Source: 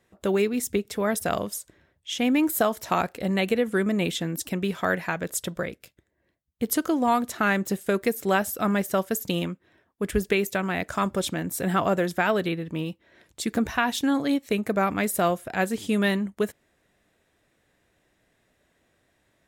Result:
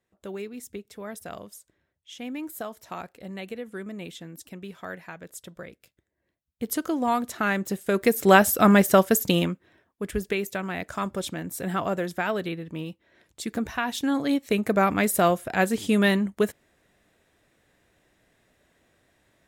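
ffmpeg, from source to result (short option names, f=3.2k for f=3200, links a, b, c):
-af "volume=14dB,afade=t=in:st=5.47:d=1.65:silence=0.298538,afade=t=in:st=7.85:d=0.49:silence=0.334965,afade=t=out:st=8.93:d=1.12:silence=0.266073,afade=t=in:st=13.83:d=0.93:silence=0.473151"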